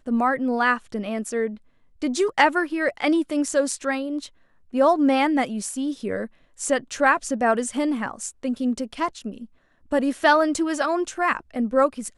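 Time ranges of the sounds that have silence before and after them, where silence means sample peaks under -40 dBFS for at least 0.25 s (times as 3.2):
2.02–4.28
4.73–6.27
6.59–9.45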